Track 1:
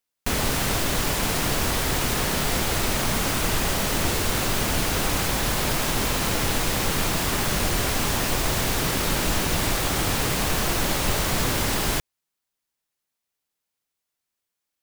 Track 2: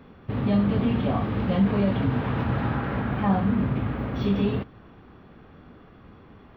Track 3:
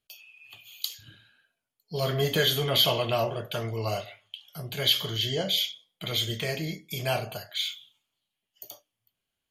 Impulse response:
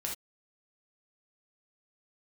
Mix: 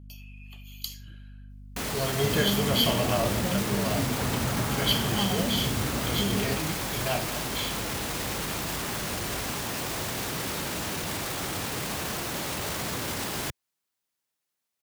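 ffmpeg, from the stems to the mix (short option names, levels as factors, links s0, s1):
-filter_complex "[0:a]highpass=87,alimiter=limit=0.075:level=0:latency=1:release=11,adelay=1500,volume=0.944[s0];[1:a]acompressor=threshold=0.0562:ratio=6,adelay=1950,volume=0.891[s1];[2:a]bandreject=f=3700:w=6,aeval=exprs='val(0)+0.00708*(sin(2*PI*50*n/s)+sin(2*PI*2*50*n/s)/2+sin(2*PI*3*50*n/s)/3+sin(2*PI*4*50*n/s)/4+sin(2*PI*5*50*n/s)/5)':c=same,volume=0.668,asplit=2[s2][s3];[s3]volume=0.251[s4];[3:a]atrim=start_sample=2205[s5];[s4][s5]afir=irnorm=-1:irlink=0[s6];[s0][s1][s2][s6]amix=inputs=4:normalize=0"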